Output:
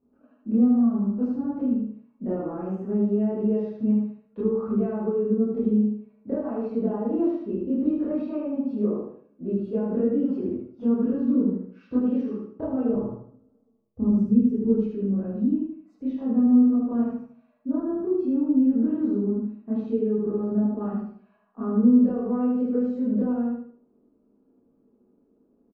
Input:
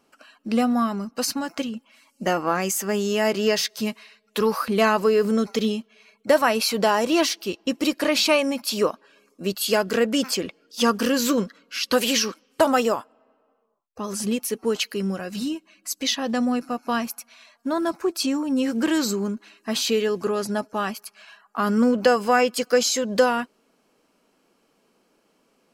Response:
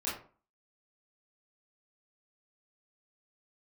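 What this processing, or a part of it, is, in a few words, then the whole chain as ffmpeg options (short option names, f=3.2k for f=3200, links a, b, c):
television next door: -filter_complex "[0:a]asettb=1/sr,asplit=3[a][b][c];[a]atrim=end=12.894[d];[b]atrim=start=12.89:end=14.86,asetpts=PTS-STARTPTS,afade=t=in:d=0.004:c=qsin,afade=t=out:st=1.966:d=0.004:c=qsin,bass=f=250:g=14,treble=f=4k:g=13[e];[c]atrim=start=14.856[f];[d][e]acrossfade=d=0.004:c1=hsin:c2=qsin[g];[g][f]acrossfade=d=0.004:c1=qsin:c2=hsin,aecho=1:1:76|152|228|304:0.631|0.202|0.0646|0.0207,acompressor=threshold=-21dB:ratio=4,lowpass=300[h];[1:a]atrim=start_sample=2205[i];[h][i]afir=irnorm=-1:irlink=0,volume=1dB"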